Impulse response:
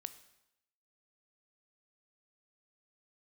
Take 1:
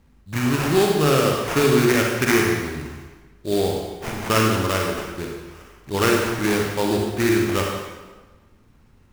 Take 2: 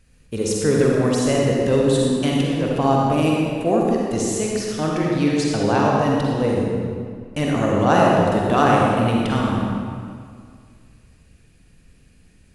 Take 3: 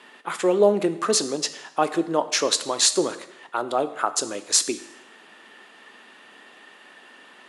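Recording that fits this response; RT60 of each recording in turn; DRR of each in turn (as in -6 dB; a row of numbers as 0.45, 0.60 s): 3; 1.3, 2.1, 0.85 s; -0.5, -3.0, 11.5 dB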